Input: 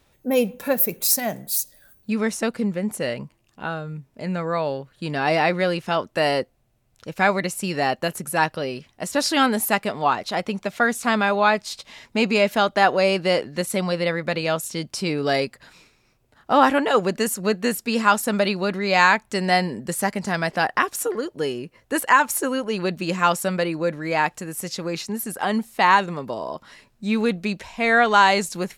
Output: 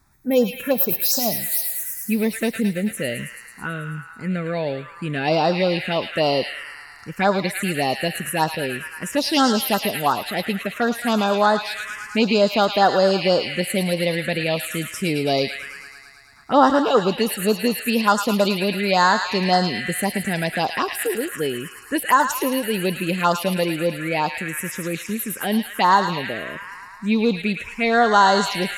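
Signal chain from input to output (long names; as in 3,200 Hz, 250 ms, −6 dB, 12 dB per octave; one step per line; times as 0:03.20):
delay with a high-pass on its return 109 ms, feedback 74%, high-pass 1,400 Hz, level −4.5 dB
phaser swept by the level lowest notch 510 Hz, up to 2,400 Hz, full sweep at −14 dBFS
level +3 dB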